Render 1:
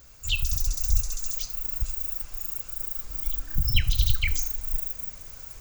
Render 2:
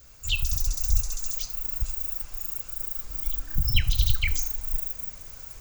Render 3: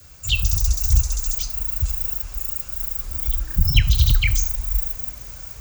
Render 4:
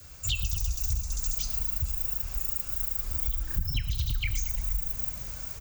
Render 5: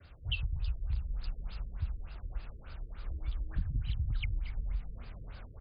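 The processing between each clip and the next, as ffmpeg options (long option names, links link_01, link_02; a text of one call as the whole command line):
ffmpeg -i in.wav -af "adynamicequalizer=threshold=0.00112:dfrequency=870:dqfactor=3.2:tfrequency=870:tqfactor=3.2:attack=5:release=100:ratio=0.375:range=2:mode=boostabove:tftype=bell" out.wav
ffmpeg -i in.wav -af "asoftclip=type=hard:threshold=-11.5dB,afreqshift=22,volume=5.5dB" out.wav
ffmpeg -i in.wav -filter_complex "[0:a]acompressor=threshold=-23dB:ratio=10,asplit=7[link_01][link_02][link_03][link_04][link_05][link_06][link_07];[link_02]adelay=114,afreqshift=-47,volume=-13.5dB[link_08];[link_03]adelay=228,afreqshift=-94,volume=-18.2dB[link_09];[link_04]adelay=342,afreqshift=-141,volume=-23dB[link_10];[link_05]adelay=456,afreqshift=-188,volume=-27.7dB[link_11];[link_06]adelay=570,afreqshift=-235,volume=-32.4dB[link_12];[link_07]adelay=684,afreqshift=-282,volume=-37.2dB[link_13];[link_01][link_08][link_09][link_10][link_11][link_12][link_13]amix=inputs=7:normalize=0,volume=-2dB" out.wav
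ffmpeg -i in.wav -af "afftfilt=real='re*lt(b*sr/1024,490*pow(5100/490,0.5+0.5*sin(2*PI*3.4*pts/sr)))':imag='im*lt(b*sr/1024,490*pow(5100/490,0.5+0.5*sin(2*PI*3.4*pts/sr)))':win_size=1024:overlap=0.75,volume=-3.5dB" out.wav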